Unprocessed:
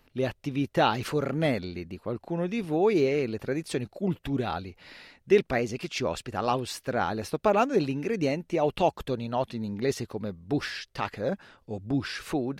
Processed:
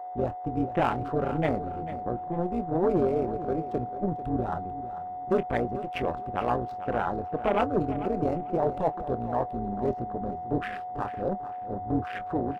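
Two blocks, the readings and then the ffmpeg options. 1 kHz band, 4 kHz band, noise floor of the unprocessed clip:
+2.5 dB, -11.5 dB, -65 dBFS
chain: -filter_complex "[0:a]asplit=2[a][b];[b]aeval=exprs='0.0944*(abs(mod(val(0)/0.0944+3,4)-2)-1)':c=same,volume=-7.5dB[c];[a][c]amix=inputs=2:normalize=0,adynamicsmooth=sensitivity=5.5:basefreq=670,asoftclip=type=hard:threshold=-16dB,tremolo=f=180:d=0.824,aeval=exprs='val(0)+0.0178*sin(2*PI*730*n/s)':c=same,afwtdn=0.0178,asplit=2[d][e];[e]adelay=25,volume=-13.5dB[f];[d][f]amix=inputs=2:normalize=0,aecho=1:1:444|888|1332:0.211|0.0486|0.0112"

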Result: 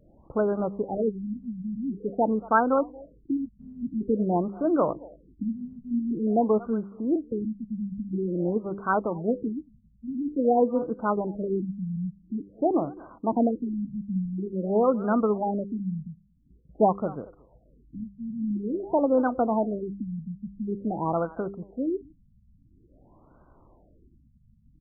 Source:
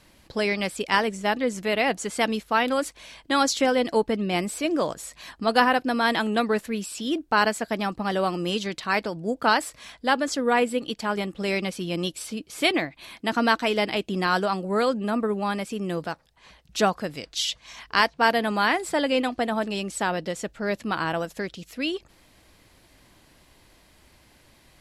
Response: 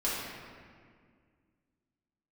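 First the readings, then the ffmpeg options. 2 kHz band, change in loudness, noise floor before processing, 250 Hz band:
-15.0 dB, -2.5 dB, -58 dBFS, +1.0 dB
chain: -filter_complex "[0:a]bandreject=f=99.15:t=h:w=4,bandreject=f=198.3:t=h:w=4,bandreject=f=297.45:t=h:w=4,bandreject=f=396.6:t=h:w=4,bandreject=f=495.75:t=h:w=4,asplit=2[a][b];[b]adelay=230,highpass=300,lowpass=3.4k,asoftclip=type=hard:threshold=-14dB,volume=-20dB[c];[a][c]amix=inputs=2:normalize=0,afftfilt=real='re*lt(b*sr/1024,220*pow(1600/220,0.5+0.5*sin(2*PI*0.48*pts/sr)))':imag='im*lt(b*sr/1024,220*pow(1600/220,0.5+0.5*sin(2*PI*0.48*pts/sr)))':win_size=1024:overlap=0.75,volume=2dB"

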